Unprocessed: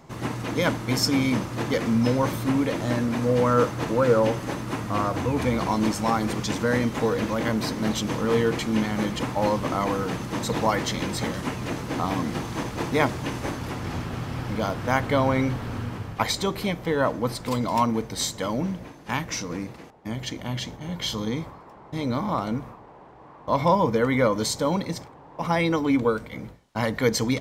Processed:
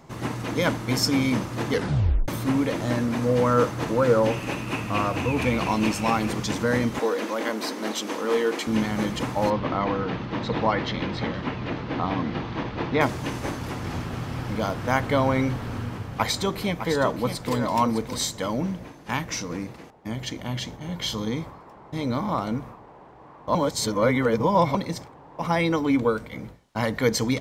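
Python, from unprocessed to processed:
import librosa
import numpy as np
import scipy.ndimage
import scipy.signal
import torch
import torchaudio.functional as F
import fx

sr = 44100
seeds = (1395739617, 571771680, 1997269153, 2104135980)

y = fx.peak_eq(x, sr, hz=2600.0, db=14.0, octaves=0.29, at=(4.3, 6.28))
y = fx.highpass(y, sr, hz=270.0, slope=24, at=(6.99, 8.67))
y = fx.lowpass(y, sr, hz=4100.0, slope=24, at=(9.5, 13.01))
y = fx.echo_single(y, sr, ms=607, db=-9.0, at=(15.52, 18.18))
y = fx.edit(y, sr, fx.tape_stop(start_s=1.72, length_s=0.56),
    fx.reverse_span(start_s=23.55, length_s=1.2), tone=tone)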